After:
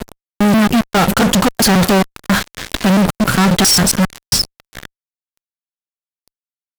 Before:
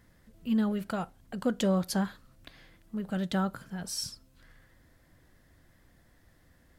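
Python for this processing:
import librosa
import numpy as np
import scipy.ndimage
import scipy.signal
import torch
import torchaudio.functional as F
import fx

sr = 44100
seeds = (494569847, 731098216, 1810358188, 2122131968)

y = fx.block_reorder(x, sr, ms=135.0, group=3)
y = fx.leveller(y, sr, passes=1)
y = fx.fuzz(y, sr, gain_db=49.0, gate_db=-48.0)
y = y * librosa.db_to_amplitude(3.5)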